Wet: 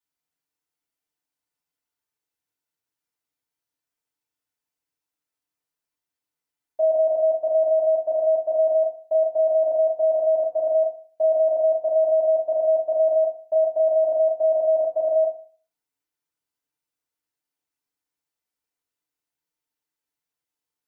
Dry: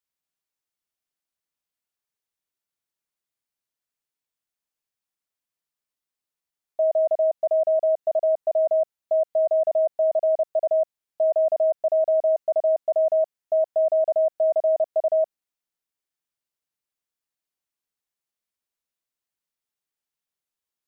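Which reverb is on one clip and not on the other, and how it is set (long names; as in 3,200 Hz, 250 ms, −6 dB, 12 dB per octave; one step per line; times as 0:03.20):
feedback delay network reverb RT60 0.43 s, low-frequency decay 0.95×, high-frequency decay 0.6×, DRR −7 dB
level −6 dB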